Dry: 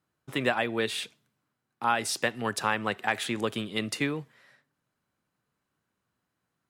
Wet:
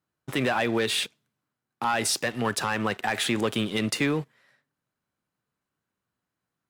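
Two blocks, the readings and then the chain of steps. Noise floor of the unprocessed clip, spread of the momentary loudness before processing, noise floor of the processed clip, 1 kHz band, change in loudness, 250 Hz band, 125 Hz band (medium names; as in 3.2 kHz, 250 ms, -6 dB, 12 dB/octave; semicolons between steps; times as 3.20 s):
-83 dBFS, 6 LU, under -85 dBFS, +1.0 dB, +3.0 dB, +5.0 dB, +5.5 dB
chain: waveshaping leveller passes 2; peak limiter -17 dBFS, peak gain reduction 6 dB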